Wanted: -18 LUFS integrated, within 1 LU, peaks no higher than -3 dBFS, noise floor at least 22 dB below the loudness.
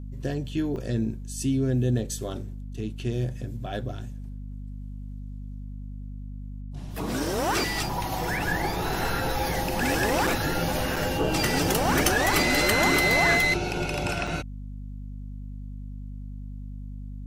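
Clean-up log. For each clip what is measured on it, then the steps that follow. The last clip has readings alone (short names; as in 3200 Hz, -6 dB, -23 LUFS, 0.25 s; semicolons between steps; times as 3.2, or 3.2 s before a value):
dropouts 4; longest dropout 4.4 ms; hum 50 Hz; harmonics up to 250 Hz; hum level -34 dBFS; loudness -25.5 LUFS; peak -6.0 dBFS; loudness target -18.0 LUFS
-> interpolate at 0.76/10.27/10.96/14.27, 4.4 ms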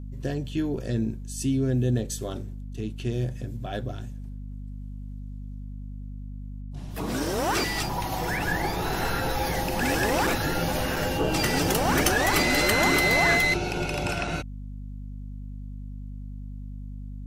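dropouts 0; hum 50 Hz; harmonics up to 250 Hz; hum level -34 dBFS
-> de-hum 50 Hz, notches 5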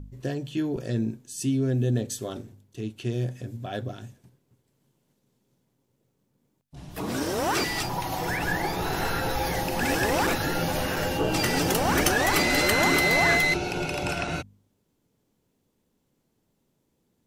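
hum none; loudness -25.5 LUFS; peak -6.0 dBFS; loudness target -18.0 LUFS
-> gain +7.5 dB; limiter -3 dBFS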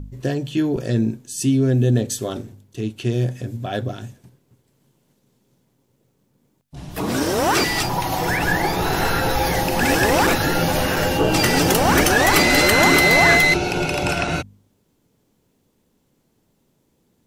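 loudness -18.0 LUFS; peak -3.0 dBFS; noise floor -66 dBFS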